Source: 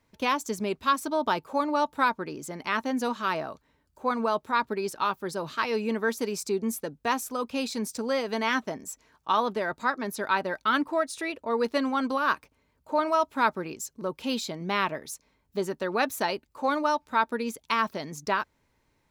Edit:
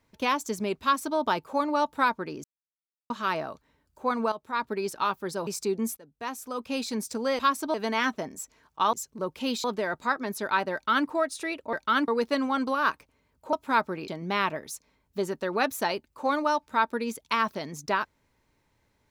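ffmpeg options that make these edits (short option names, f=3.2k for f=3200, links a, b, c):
-filter_complex "[0:a]asplit=14[a][b][c][d][e][f][g][h][i][j][k][l][m][n];[a]atrim=end=2.44,asetpts=PTS-STARTPTS,afade=t=out:st=2.436:d=0.004:c=hsin[o];[b]atrim=start=2.44:end=3.1,asetpts=PTS-STARTPTS,volume=0[p];[c]atrim=start=3.1:end=4.32,asetpts=PTS-STARTPTS,afade=t=in:d=0.004:c=hsin,afade=t=out:st=1.216:d=0.004:c=hsin:silence=0.211349[q];[d]atrim=start=4.32:end=5.472,asetpts=PTS-STARTPTS,afade=t=in:d=0.46:silence=0.211349[r];[e]atrim=start=6.308:end=6.81,asetpts=PTS-STARTPTS,afade=t=out:st=0.498:d=0.004:c=hsin:silence=0.0891251[s];[f]atrim=start=6.81:end=8.232,asetpts=PTS-STARTPTS,afade=t=in:d=0.87:silence=0.0891251[t];[g]atrim=start=0.818:end=1.172[u];[h]atrim=start=8.228:end=9.422[v];[i]atrim=start=13.758:end=14.472[w];[j]atrim=start=9.418:end=11.512[x];[k]atrim=start=10.508:end=10.862[y];[l]atrim=start=11.508:end=12.962[z];[m]atrim=start=13.208:end=13.762[aa];[n]atrim=start=14.468[ab];[o][p][q][r]concat=n=4:v=0:a=1[ac];[s][t]concat=n=2:v=0:a=1[ad];[ac][ad]acrossfade=d=0.004:c1=hsin:c2=hsin[ae];[ae][u]acrossfade=d=0.004:c1=hsin:c2=hsin[af];[af][v]acrossfade=d=0.004:c1=hsin:c2=hsin[ag];[ag][w]acrossfade=d=0.004:c1=hsin:c2=hsin[ah];[ah][x]acrossfade=d=0.004:c1=hsin:c2=hsin[ai];[ai][y]acrossfade=d=0.004:c1=hsin:c2=hsin[aj];[aj][z]acrossfade=d=0.004:c1=hsin:c2=hsin[ak];[ak][aa]acrossfade=d=0.004:c1=hsin:c2=hsin[al];[al][ab]acrossfade=d=0.004:c1=hsin:c2=hsin"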